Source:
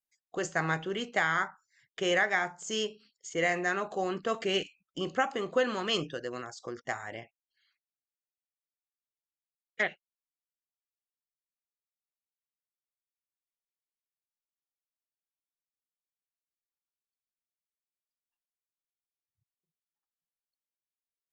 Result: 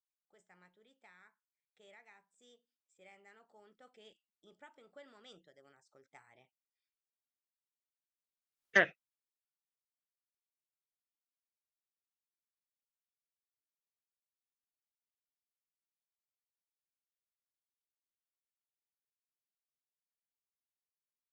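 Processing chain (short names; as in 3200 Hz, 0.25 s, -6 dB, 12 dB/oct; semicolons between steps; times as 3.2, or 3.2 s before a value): Doppler pass-by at 8.69, 37 m/s, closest 2.7 m; gain +7 dB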